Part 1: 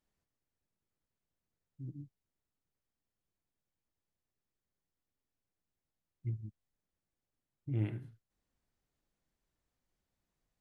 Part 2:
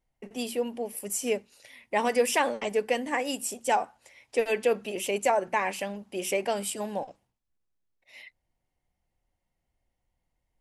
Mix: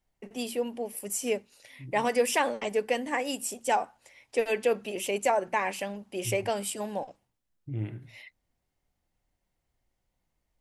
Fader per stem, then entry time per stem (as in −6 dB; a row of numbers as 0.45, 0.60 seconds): +0.5, −1.0 decibels; 0.00, 0.00 seconds